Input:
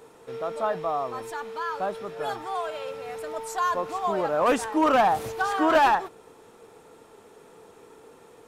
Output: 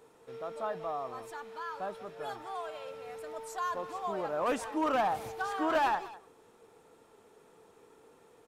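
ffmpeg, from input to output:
-filter_complex "[0:a]asplit=2[a][b];[b]adelay=190,highpass=300,lowpass=3.4k,asoftclip=type=hard:threshold=-22dB,volume=-14dB[c];[a][c]amix=inputs=2:normalize=0,volume=-9dB"

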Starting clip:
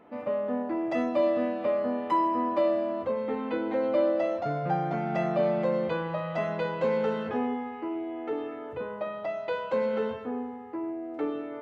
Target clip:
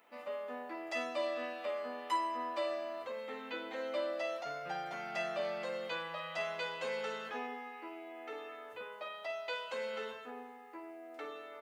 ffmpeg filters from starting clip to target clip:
-af "aderivative,aecho=1:1:12|50:0.422|0.335,volume=8dB"

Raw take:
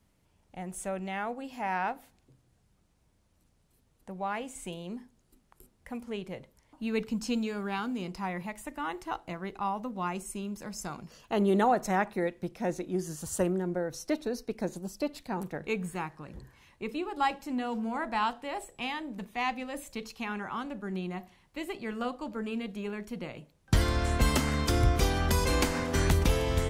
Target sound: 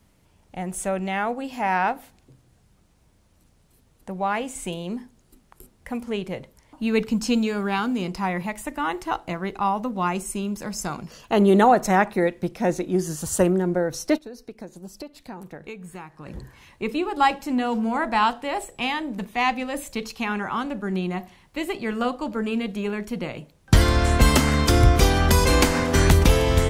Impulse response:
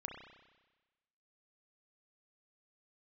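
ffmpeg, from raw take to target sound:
-filter_complex "[0:a]asplit=3[a][b][c];[a]afade=t=out:st=14.17:d=0.02[d];[b]acompressor=threshold=-45dB:ratio=6,afade=t=in:st=14.17:d=0.02,afade=t=out:st=16.25:d=0.02[e];[c]afade=t=in:st=16.25:d=0.02[f];[d][e][f]amix=inputs=3:normalize=0,volume=9dB"

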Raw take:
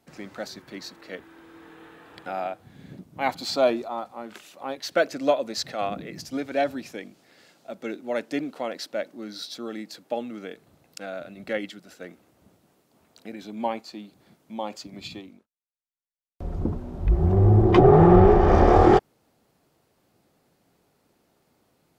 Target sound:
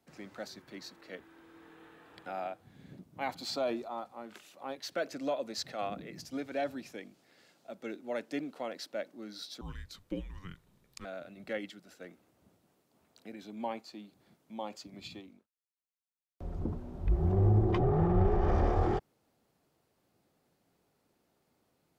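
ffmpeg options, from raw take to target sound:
-filter_complex "[0:a]acrossover=split=140[a][b];[b]alimiter=limit=-16dB:level=0:latency=1:release=54[c];[a][c]amix=inputs=2:normalize=0,asettb=1/sr,asplit=3[d][e][f];[d]atrim=end=9.614[g];[e]atrim=start=9.61:end=11.05,asetpts=PTS-STARTPTS,afade=t=in:d=0.004:c=qsin,afade=t=out:st=1.436:d=0.004:c=qsin,afreqshift=-290[h];[f]atrim=start=11.046[i];[g][h]acrossfade=d=0.004:c1=hsin:c2=qsin[j];[j][i]acrossfade=d=0.004:c1=qsin:c2=hsin,volume=-8dB"

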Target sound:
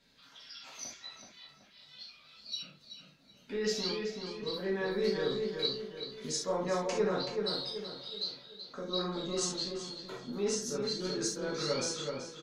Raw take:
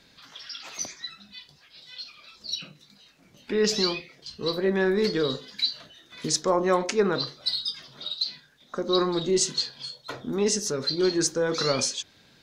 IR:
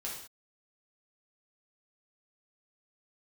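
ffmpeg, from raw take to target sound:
-filter_complex "[0:a]asplit=2[a][b];[b]adelay=379,lowpass=f=2.2k:p=1,volume=-4dB,asplit=2[c][d];[d]adelay=379,lowpass=f=2.2k:p=1,volume=0.44,asplit=2[e][f];[f]adelay=379,lowpass=f=2.2k:p=1,volume=0.44,asplit=2[g][h];[h]adelay=379,lowpass=f=2.2k:p=1,volume=0.44,asplit=2[i][j];[j]adelay=379,lowpass=f=2.2k:p=1,volume=0.44,asplit=2[k][l];[l]adelay=379,lowpass=f=2.2k:p=1,volume=0.44[m];[a][c][e][g][i][k][m]amix=inputs=7:normalize=0[n];[1:a]atrim=start_sample=2205,afade=t=out:st=0.13:d=0.01,atrim=end_sample=6174[o];[n][o]afir=irnorm=-1:irlink=0,volume=-9dB"

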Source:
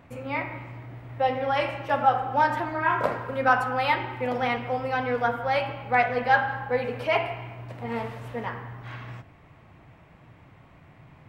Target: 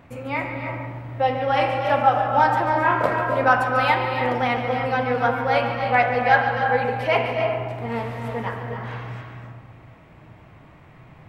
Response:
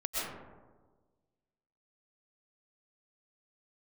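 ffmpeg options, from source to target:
-filter_complex "[0:a]asplit=2[a][b];[1:a]atrim=start_sample=2205,adelay=143[c];[b][c]afir=irnorm=-1:irlink=0,volume=-9dB[d];[a][d]amix=inputs=2:normalize=0,volume=3dB"

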